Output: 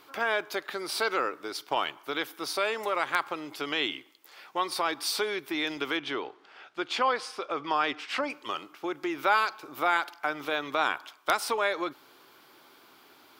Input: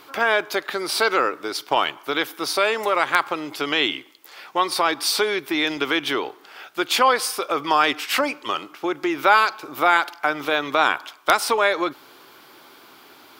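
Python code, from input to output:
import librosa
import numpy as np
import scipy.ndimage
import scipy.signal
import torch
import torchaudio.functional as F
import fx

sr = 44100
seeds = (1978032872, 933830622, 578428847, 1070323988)

y = fx.air_absorb(x, sr, metres=95.0, at=(5.97, 8.3))
y = F.gain(torch.from_numpy(y), -8.5).numpy()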